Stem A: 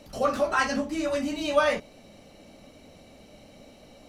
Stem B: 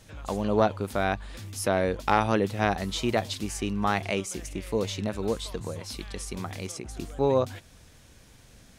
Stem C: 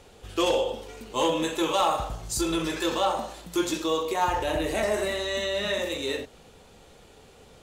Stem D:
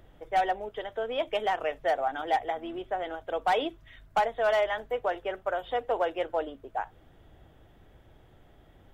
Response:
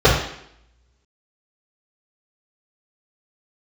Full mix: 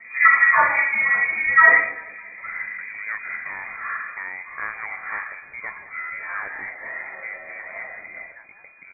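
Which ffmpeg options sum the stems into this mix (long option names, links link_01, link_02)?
-filter_complex "[0:a]volume=1.5dB,asplit=3[link_01][link_02][link_03];[link_02]volume=-19.5dB[link_04];[link_03]volume=-14.5dB[link_05];[1:a]adelay=2500,volume=-7dB,asplit=2[link_06][link_07];[link_07]volume=-15dB[link_08];[2:a]highpass=860,tremolo=f=77:d=1,adelay=2050,volume=-17dB,asplit=2[link_09][link_10];[link_10]volume=-7dB[link_11];[3:a]acompressor=threshold=-29dB:ratio=6,adelay=1600,volume=-12.5dB,asplit=2[link_12][link_13];[link_13]volume=-8.5dB[link_14];[4:a]atrim=start_sample=2205[link_15];[link_04][link_11]amix=inputs=2:normalize=0[link_16];[link_16][link_15]afir=irnorm=-1:irlink=0[link_17];[link_05][link_08][link_14]amix=inputs=3:normalize=0,aecho=0:1:200|400|600|800|1000|1200|1400|1600:1|0.54|0.292|0.157|0.085|0.0459|0.0248|0.0134[link_18];[link_01][link_06][link_09][link_12][link_17][link_18]amix=inputs=6:normalize=0,lowshelf=frequency=250:gain=-7,lowpass=frequency=2100:width_type=q:width=0.5098,lowpass=frequency=2100:width_type=q:width=0.6013,lowpass=frequency=2100:width_type=q:width=0.9,lowpass=frequency=2100:width_type=q:width=2.563,afreqshift=-2500"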